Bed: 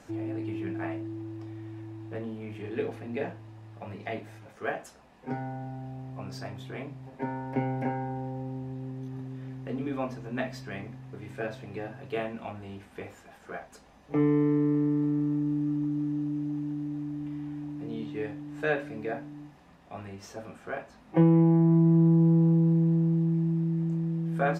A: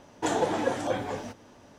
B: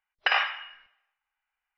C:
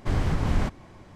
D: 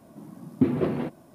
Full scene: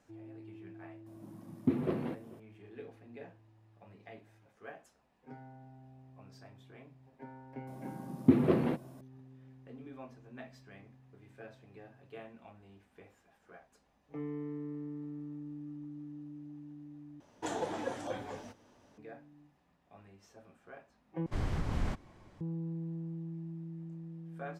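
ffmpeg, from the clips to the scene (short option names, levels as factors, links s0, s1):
-filter_complex "[4:a]asplit=2[s0][s1];[0:a]volume=0.158[s2];[s0]asplit=2[s3][s4];[s4]adelay=437.3,volume=0.0891,highshelf=f=4000:g=-9.84[s5];[s3][s5]amix=inputs=2:normalize=0[s6];[s2]asplit=3[s7][s8][s9];[s7]atrim=end=17.204[s10];[1:a]atrim=end=1.78,asetpts=PTS-STARTPTS,volume=0.316[s11];[s8]atrim=start=18.976:end=21.264[s12];[3:a]atrim=end=1.15,asetpts=PTS-STARTPTS,volume=0.335[s13];[s9]atrim=start=22.406[s14];[s6]atrim=end=1.34,asetpts=PTS-STARTPTS,volume=0.398,afade=t=in:d=0.004:c=hsin,afade=t=out:st=1.336:d=0.004:c=hsin,adelay=1060[s15];[s1]atrim=end=1.34,asetpts=PTS-STARTPTS,volume=0.794,afade=t=in:d=0.004:c=hsin,afade=t=out:st=1.336:d=0.004:c=hsin,adelay=7670[s16];[s10][s11]acrossfade=d=0.004:c1=hsin:c2=hsin[s17];[s17][s12]acrossfade=d=0.004:c1=hsin:c2=hsin[s18];[s18][s13]acrossfade=d=0.004:c1=hsin:c2=hsin[s19];[s19][s14]acrossfade=d=0.004:c1=hsin:c2=hsin[s20];[s20][s15][s16]amix=inputs=3:normalize=0"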